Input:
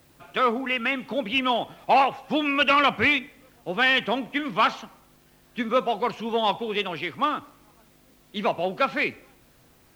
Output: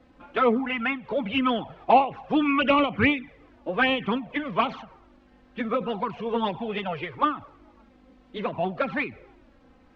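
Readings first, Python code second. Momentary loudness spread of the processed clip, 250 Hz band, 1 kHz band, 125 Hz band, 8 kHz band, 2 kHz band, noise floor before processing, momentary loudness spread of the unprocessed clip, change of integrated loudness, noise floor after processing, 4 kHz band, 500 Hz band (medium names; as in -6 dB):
12 LU, +3.0 dB, -1.5 dB, +3.5 dB, no reading, -4.0 dB, -58 dBFS, 11 LU, -1.5 dB, -57 dBFS, -6.0 dB, 0.0 dB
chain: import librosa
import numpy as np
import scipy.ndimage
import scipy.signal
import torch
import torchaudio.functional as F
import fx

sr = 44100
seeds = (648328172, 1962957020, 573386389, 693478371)

y = fx.env_flanger(x, sr, rest_ms=4.0, full_db=-16.0)
y = fx.spacing_loss(y, sr, db_at_10k=33)
y = fx.end_taper(y, sr, db_per_s=160.0)
y = F.gain(torch.from_numpy(y), 7.5).numpy()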